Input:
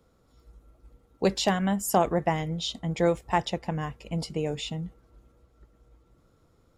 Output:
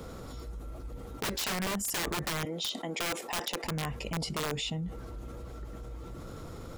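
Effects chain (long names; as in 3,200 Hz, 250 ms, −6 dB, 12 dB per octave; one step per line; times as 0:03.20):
0:02.45–0:03.64: high-pass filter 270 Hz 24 dB per octave
wrap-around overflow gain 22 dB
envelope flattener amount 70%
level −6 dB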